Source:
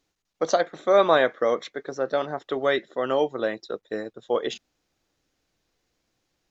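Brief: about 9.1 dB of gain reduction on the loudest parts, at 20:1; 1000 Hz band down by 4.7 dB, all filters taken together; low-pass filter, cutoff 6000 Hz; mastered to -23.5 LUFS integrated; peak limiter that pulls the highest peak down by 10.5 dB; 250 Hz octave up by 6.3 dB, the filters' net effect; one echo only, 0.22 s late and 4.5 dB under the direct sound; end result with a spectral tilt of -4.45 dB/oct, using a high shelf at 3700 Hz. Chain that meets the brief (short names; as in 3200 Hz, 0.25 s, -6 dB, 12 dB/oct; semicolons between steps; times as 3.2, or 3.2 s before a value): LPF 6000 Hz; bell 250 Hz +9 dB; bell 1000 Hz -7 dB; high shelf 3700 Hz -5.5 dB; compressor 20:1, threshold -23 dBFS; limiter -23.5 dBFS; echo 0.22 s -4.5 dB; gain +10.5 dB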